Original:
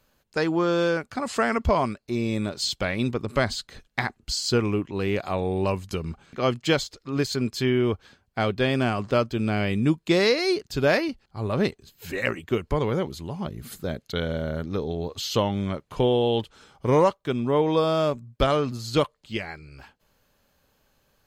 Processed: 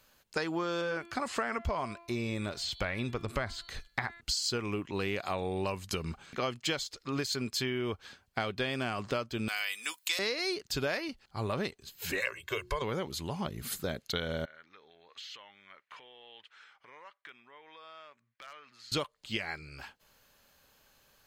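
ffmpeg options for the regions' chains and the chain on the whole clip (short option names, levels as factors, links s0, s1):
-filter_complex "[0:a]asettb=1/sr,asplit=3[s0][s1][s2];[s0]atrim=end=0.814[s3];[s1]atrim=start=0.81:end=4.21,asetpts=PTS-STARTPTS,afade=t=in:d=0.004:c=qsin,afade=t=out:st=3.396:d=0.004:c=qsin,bandreject=f=341.1:t=h:w=4,bandreject=f=682.2:t=h:w=4,bandreject=f=1023.3:t=h:w=4,bandreject=f=1364.4:t=h:w=4,bandreject=f=1705.5:t=h:w=4,bandreject=f=2046.6:t=h:w=4,bandreject=f=2387.7:t=h:w=4,bandreject=f=2728.8:t=h:w=4,bandreject=f=3069.9:t=h:w=4,bandreject=f=3411:t=h:w=4,bandreject=f=3752.1:t=h:w=4,bandreject=f=4093.2:t=h:w=4,bandreject=f=4434.3:t=h:w=4,acrossover=split=2500[s4][s5];[s5]acompressor=threshold=0.00708:ratio=4:attack=1:release=60[s6];[s4][s6]amix=inputs=2:normalize=0,asubboost=boost=3.5:cutoff=110[s7];[s2]atrim=start=4.206[s8];[s3][s7]acrossfade=d=0.004:c1=hsin:c2=qsin[s9];[s9][s8]acrossfade=d=0.004:c1=qsin:c2=hsin,asettb=1/sr,asplit=3[s10][s11][s12];[s10]atrim=end=9.484[s13];[s11]atrim=start=9.48:end=10.19,asetpts=PTS-STARTPTS,afade=t=in:d=0.004:c=qsin,afade=t=out:st=0.706:d=0.004:c=qsin,highpass=1200,aemphasis=mode=production:type=bsi,aecho=1:1:4:0.37,atrim=end_sample=31311[s14];[s12]atrim=start=10.186[s15];[s13][s14]acrossfade=d=0.004:c1=hsin:c2=qsin[s16];[s16][s15]acrossfade=d=0.004:c1=qsin:c2=hsin,asettb=1/sr,asplit=3[s17][s18][s19];[s17]atrim=end=12.204[s20];[s18]atrim=start=12.2:end=12.82,asetpts=PTS-STARTPTS,afade=t=in:d=0.004:c=qsin,afade=t=out:st=0.616:d=0.004:c=qsin,equalizer=f=180:t=o:w=2.5:g=-11.5,bandreject=f=60:t=h:w=6,bandreject=f=120:t=h:w=6,bandreject=f=180:t=h:w=6,bandreject=f=240:t=h:w=6,bandreject=f=300:t=h:w=6,bandreject=f=360:t=h:w=6,aecho=1:1:1.9:0.8,atrim=end_sample=27342[s21];[s19]atrim=start=12.816[s22];[s20][s21]acrossfade=d=0.004:c1=hsin:c2=qsin[s23];[s23][s22]acrossfade=d=0.004:c1=qsin:c2=hsin,asettb=1/sr,asplit=3[s24][s25][s26];[s24]atrim=end=14.454[s27];[s25]atrim=start=14.45:end=18.92,asetpts=PTS-STARTPTS,afade=t=in:d=0.004:c=qsin,afade=t=out:st=4.466:d=0.004:c=qsin,acompressor=threshold=0.02:ratio=8:attack=3.2:release=140:knee=1:detection=peak,bandpass=f=1900:t=q:w=2.3,aeval=exprs='0.0112*(abs(mod(val(0)/0.0112+3,4)-2)-1)':c=same[s28];[s26]atrim=start=18.916[s29];[s27][s28]acrossfade=d=0.004:c1=hsin:c2=qsin[s30];[s30][s29]acrossfade=d=0.004:c1=qsin:c2=hsin,tiltshelf=f=760:g=-4.5,acompressor=threshold=0.0316:ratio=6"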